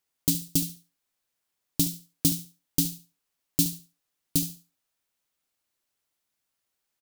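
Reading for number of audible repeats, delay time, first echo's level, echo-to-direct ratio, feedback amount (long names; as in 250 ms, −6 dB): 2, 70 ms, −12.5 dB, −12.5 dB, 22%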